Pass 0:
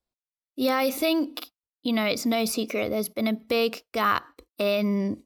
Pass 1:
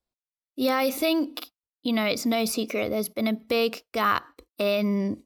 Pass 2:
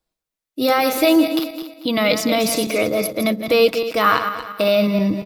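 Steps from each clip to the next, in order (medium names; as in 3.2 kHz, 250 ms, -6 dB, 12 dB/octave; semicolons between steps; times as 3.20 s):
no audible change
backward echo that repeats 116 ms, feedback 57%, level -8 dB; comb 6.3 ms, depth 41%; trim +6.5 dB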